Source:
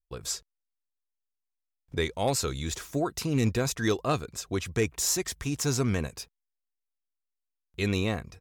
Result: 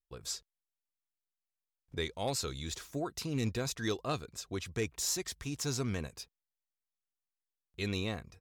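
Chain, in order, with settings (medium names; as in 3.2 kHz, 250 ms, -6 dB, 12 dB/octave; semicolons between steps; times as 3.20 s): dynamic bell 4.1 kHz, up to +5 dB, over -46 dBFS, Q 1.5; trim -8 dB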